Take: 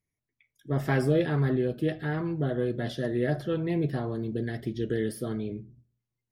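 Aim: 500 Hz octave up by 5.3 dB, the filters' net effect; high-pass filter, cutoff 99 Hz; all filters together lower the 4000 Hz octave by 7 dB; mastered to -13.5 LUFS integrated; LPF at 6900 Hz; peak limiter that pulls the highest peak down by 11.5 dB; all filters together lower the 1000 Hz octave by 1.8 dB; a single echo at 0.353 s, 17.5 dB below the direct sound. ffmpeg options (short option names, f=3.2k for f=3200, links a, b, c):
-af "highpass=99,lowpass=6.9k,equalizer=f=500:t=o:g=8,equalizer=f=1k:t=o:g=-7,equalizer=f=4k:t=o:g=-8.5,alimiter=limit=-21dB:level=0:latency=1,aecho=1:1:353:0.133,volume=17dB"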